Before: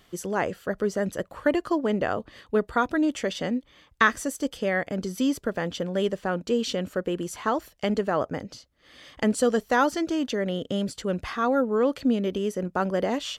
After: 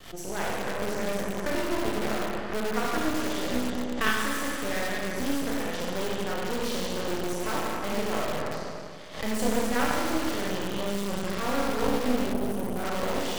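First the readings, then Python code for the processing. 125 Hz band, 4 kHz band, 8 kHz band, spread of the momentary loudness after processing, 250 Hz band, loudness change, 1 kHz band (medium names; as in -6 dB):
-2.5 dB, +1.5 dB, +2.0 dB, 5 LU, -3.5 dB, -3.0 dB, -2.5 dB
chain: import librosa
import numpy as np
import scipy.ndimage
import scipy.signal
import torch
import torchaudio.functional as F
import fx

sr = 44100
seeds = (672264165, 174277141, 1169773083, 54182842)

p1 = fx.rev_schroeder(x, sr, rt60_s=2.2, comb_ms=25, drr_db=-5.5)
p2 = (np.mod(10.0 ** (17.5 / 20.0) * p1 + 1.0, 2.0) - 1.0) / 10.0 ** (17.5 / 20.0)
p3 = p1 + F.gain(torch.from_numpy(p2), -7.0).numpy()
p4 = fx.spec_box(p3, sr, start_s=12.32, length_s=0.52, low_hz=860.0, high_hz=8300.0, gain_db=-8)
p5 = np.maximum(p4, 0.0)
p6 = fx.pre_swell(p5, sr, db_per_s=110.0)
y = F.gain(torch.from_numpy(p6), -6.0).numpy()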